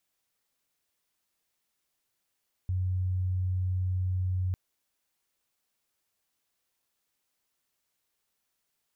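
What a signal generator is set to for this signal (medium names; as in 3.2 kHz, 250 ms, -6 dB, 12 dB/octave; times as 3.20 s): tone sine 92.1 Hz -26 dBFS 1.85 s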